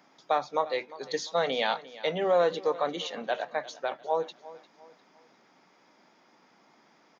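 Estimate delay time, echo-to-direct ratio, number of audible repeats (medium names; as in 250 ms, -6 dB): 350 ms, -17.5 dB, 3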